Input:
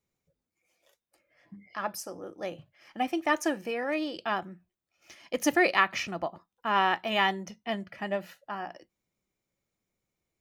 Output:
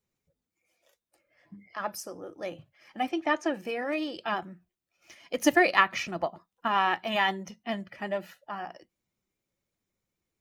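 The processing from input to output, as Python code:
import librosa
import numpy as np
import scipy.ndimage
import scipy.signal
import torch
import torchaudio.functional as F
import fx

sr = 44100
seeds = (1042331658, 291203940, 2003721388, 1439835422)

y = fx.spec_quant(x, sr, step_db=15)
y = fx.lowpass(y, sr, hz=fx.line((3.08, 6200.0), (3.53, 3700.0)), slope=12, at=(3.08, 3.53), fade=0.02)
y = fx.transient(y, sr, attack_db=5, sustain_db=1, at=(5.42, 6.68))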